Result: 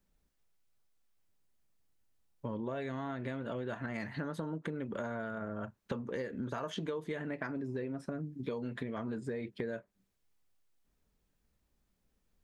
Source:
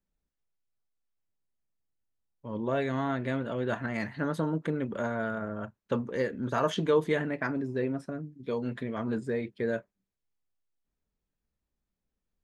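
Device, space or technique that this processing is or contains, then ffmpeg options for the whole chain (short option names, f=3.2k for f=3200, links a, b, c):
serial compression, leveller first: -af "acompressor=threshold=-35dB:ratio=2,acompressor=threshold=-44dB:ratio=5,volume=8dB"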